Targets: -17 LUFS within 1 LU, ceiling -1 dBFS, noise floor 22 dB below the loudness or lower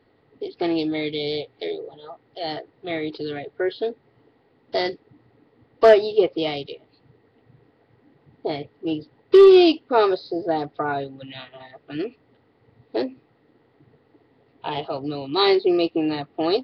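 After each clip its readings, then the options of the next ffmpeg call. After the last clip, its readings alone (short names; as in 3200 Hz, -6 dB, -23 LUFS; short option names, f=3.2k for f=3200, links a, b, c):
loudness -21.5 LUFS; peak -6.0 dBFS; loudness target -17.0 LUFS
-> -af "volume=4.5dB"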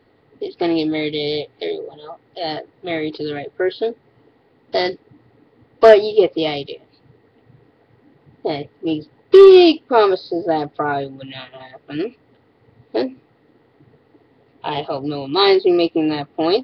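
loudness -17.0 LUFS; peak -1.5 dBFS; noise floor -57 dBFS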